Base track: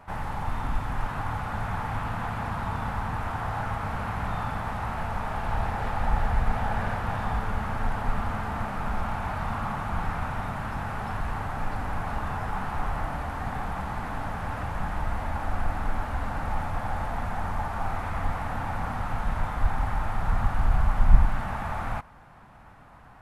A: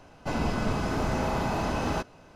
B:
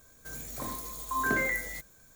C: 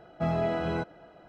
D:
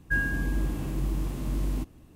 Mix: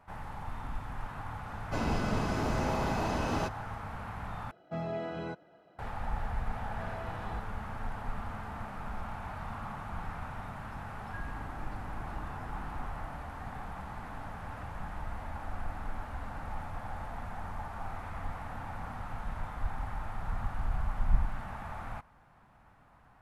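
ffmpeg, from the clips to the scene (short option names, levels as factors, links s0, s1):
-filter_complex "[3:a]asplit=2[s0][s1];[0:a]volume=0.316[s2];[s0]highpass=94[s3];[s1]highpass=f=560:p=1[s4];[4:a]lowpass=f=1500:p=1[s5];[s2]asplit=2[s6][s7];[s6]atrim=end=4.514[s8];[s3]atrim=end=1.28,asetpts=PTS-STARTPTS,volume=0.398[s9];[s7]atrim=start=5.786[s10];[1:a]atrim=end=2.35,asetpts=PTS-STARTPTS,volume=0.668,afade=t=in:d=0.004:c=hsin,afade=t=out:st=2.346:d=0.004:c=hsin,adelay=1460[s11];[s4]atrim=end=1.28,asetpts=PTS-STARTPTS,volume=0.2,afade=t=in:d=0.004:c=hsin,afade=t=out:st=1.276:d=0.004:c=hsin,adelay=6570[s12];[s5]atrim=end=2.15,asetpts=PTS-STARTPTS,volume=0.141,afade=t=in:d=0.004:c=hsin,afade=t=out:st=2.146:d=0.004:c=hsin,adelay=11020[s13];[s8][s9]acrossfade=d=0.004:c1=hsin:c2=hsin[s14];[s14][s10]acrossfade=d=0.004:c1=hsin:c2=hsin[s15];[s15][s11][s12][s13]amix=inputs=4:normalize=0"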